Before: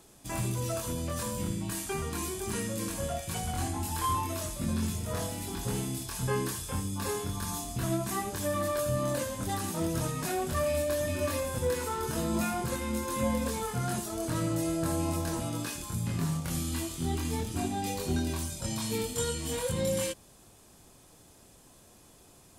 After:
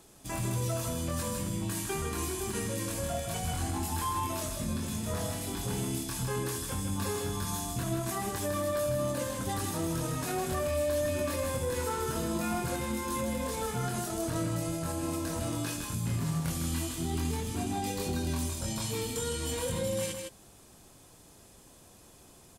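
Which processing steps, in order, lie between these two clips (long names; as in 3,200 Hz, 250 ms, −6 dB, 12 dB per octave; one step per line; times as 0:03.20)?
brickwall limiter −24.5 dBFS, peak gain reduction 6.5 dB
on a send: single-tap delay 157 ms −5.5 dB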